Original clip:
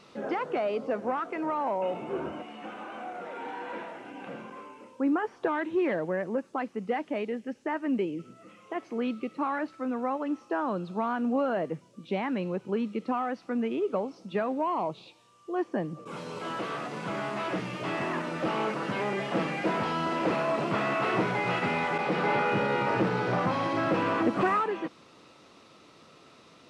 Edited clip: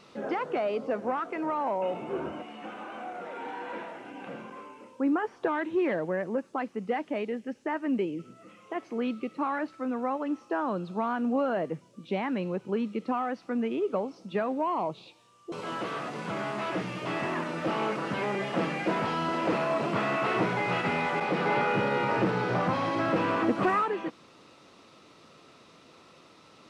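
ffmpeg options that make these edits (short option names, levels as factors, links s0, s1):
-filter_complex "[0:a]asplit=2[s0][s1];[s0]atrim=end=15.522[s2];[s1]atrim=start=16.298[s3];[s2][s3]acrossfade=d=0.004:c1=hsin:c2=hsin"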